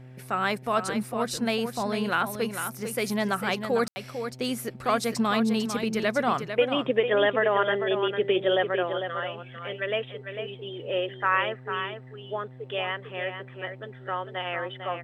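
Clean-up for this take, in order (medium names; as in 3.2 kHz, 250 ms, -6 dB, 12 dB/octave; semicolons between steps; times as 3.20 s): de-hum 127.9 Hz, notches 7; room tone fill 3.88–3.96 s; inverse comb 449 ms -8 dB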